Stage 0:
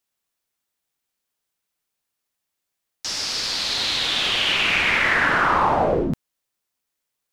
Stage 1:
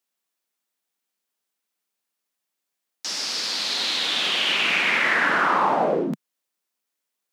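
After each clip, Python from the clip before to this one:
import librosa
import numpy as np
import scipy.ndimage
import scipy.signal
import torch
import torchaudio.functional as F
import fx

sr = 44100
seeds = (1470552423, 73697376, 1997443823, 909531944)

y = scipy.signal.sosfilt(scipy.signal.butter(6, 170.0, 'highpass', fs=sr, output='sos'), x)
y = y * librosa.db_to_amplitude(-1.5)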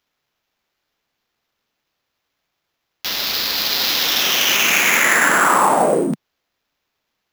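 y = fx.sample_hold(x, sr, seeds[0], rate_hz=9000.0, jitter_pct=0)
y = y * librosa.db_to_amplitude(6.0)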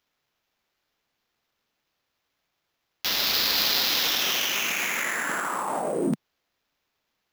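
y = fx.over_compress(x, sr, threshold_db=-20.0, ratio=-1.0)
y = y * librosa.db_to_amplitude(-6.0)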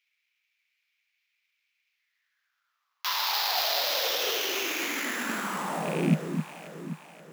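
y = fx.rattle_buzz(x, sr, strikes_db=-37.0, level_db=-19.0)
y = fx.echo_alternate(y, sr, ms=264, hz=1600.0, feedback_pct=70, wet_db=-7.0)
y = fx.filter_sweep_highpass(y, sr, from_hz=2300.0, to_hz=160.0, start_s=1.91, end_s=5.81, q=6.3)
y = y * librosa.db_to_amplitude(-5.5)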